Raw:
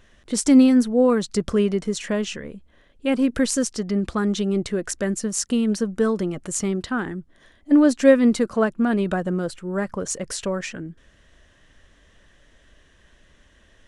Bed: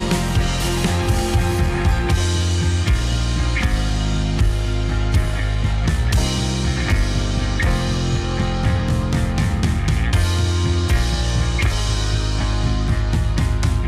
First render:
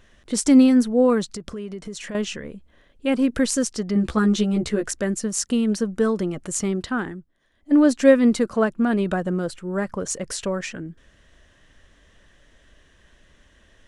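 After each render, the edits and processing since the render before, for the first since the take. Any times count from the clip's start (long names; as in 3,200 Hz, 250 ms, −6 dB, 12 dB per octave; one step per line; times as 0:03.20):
0:01.24–0:02.15: downward compressor 4 to 1, threshold −31 dBFS
0:03.94–0:04.88: double-tracking delay 14 ms −2 dB
0:07.01–0:07.80: duck −14.5 dB, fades 0.30 s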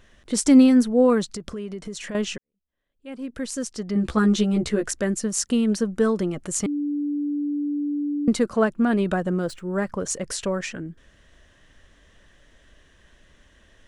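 0:02.38–0:04.19: fade in quadratic
0:06.66–0:08.28: beep over 291 Hz −22.5 dBFS
0:09.41–0:10.06: running median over 3 samples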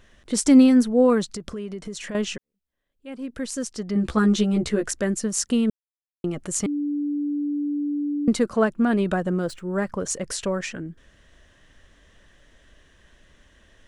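0:05.70–0:06.24: silence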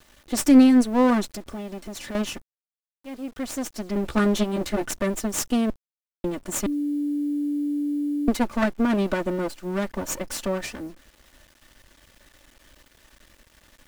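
lower of the sound and its delayed copy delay 3.4 ms
bit reduction 9 bits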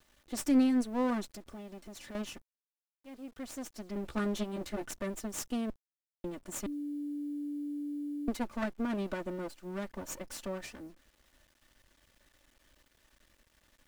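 level −12 dB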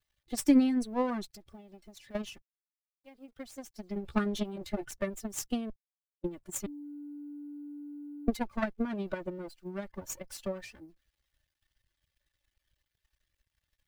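spectral dynamics exaggerated over time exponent 1.5
transient designer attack +9 dB, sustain +5 dB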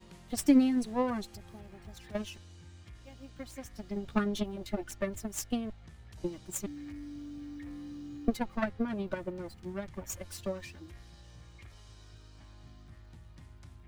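mix in bed −34 dB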